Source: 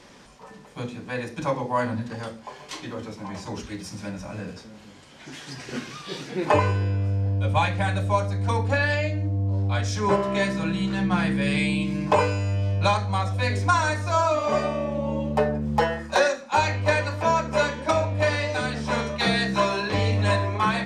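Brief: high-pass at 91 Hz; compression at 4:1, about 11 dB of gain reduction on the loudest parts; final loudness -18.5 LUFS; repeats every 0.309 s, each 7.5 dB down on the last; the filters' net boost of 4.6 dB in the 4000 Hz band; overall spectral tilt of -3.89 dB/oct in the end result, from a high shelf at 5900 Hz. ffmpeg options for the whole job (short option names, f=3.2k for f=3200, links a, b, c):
-af "highpass=91,equalizer=f=4k:t=o:g=7,highshelf=f=5.9k:g=-5.5,acompressor=threshold=-29dB:ratio=4,aecho=1:1:309|618|927|1236|1545:0.422|0.177|0.0744|0.0312|0.0131,volume=13dB"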